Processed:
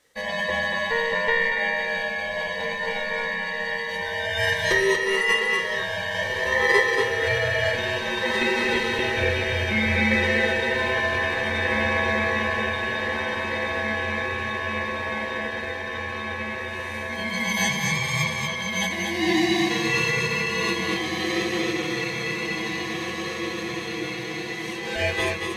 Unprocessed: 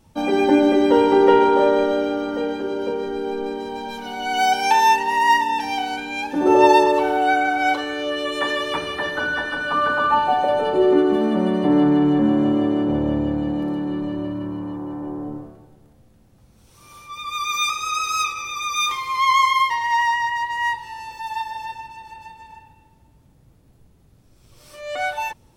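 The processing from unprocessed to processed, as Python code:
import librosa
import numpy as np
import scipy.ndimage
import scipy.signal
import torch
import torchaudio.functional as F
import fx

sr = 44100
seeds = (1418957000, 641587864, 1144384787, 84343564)

y = scipy.signal.sosfilt(scipy.signal.butter(2, 770.0, 'highpass', fs=sr, output='sos'), x)
y = fx.rider(y, sr, range_db=4, speed_s=2.0)
y = fx.echo_diffused(y, sr, ms=1958, feedback_pct=71, wet_db=-5)
y = y * np.sin(2.0 * np.pi * 1400.0 * np.arange(len(y)) / sr)
y = fx.formant_shift(y, sr, semitones=-3)
y = y + 10.0 ** (-4.5 / 20.0) * np.pad(y, (int(236 * sr / 1000.0), 0))[:len(y)]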